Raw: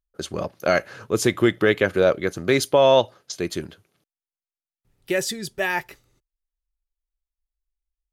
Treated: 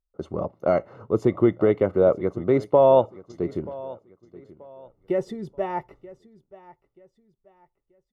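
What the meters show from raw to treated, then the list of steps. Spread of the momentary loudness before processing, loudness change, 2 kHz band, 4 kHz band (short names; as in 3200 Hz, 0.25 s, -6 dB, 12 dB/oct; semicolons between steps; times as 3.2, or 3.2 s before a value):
14 LU, -1.0 dB, -16.0 dB, under -20 dB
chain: polynomial smoothing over 65 samples; feedback echo 0.932 s, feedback 32%, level -19.5 dB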